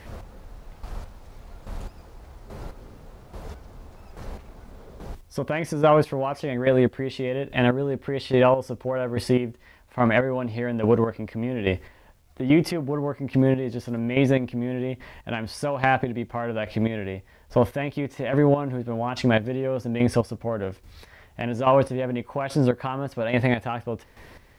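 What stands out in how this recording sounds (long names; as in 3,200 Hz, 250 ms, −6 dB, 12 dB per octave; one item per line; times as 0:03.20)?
chopped level 1.2 Hz, depth 65%, duty 25%
a quantiser's noise floor 12 bits, dither none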